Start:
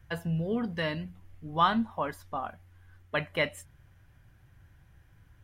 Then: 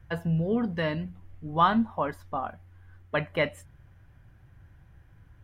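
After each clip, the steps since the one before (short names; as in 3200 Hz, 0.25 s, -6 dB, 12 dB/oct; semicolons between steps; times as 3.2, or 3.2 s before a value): high shelf 2500 Hz -9.5 dB; gain +4 dB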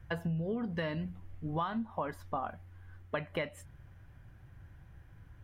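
compressor 12:1, threshold -31 dBFS, peak gain reduction 15.5 dB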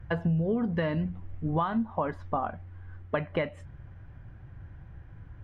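tape spacing loss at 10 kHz 24 dB; gain +8 dB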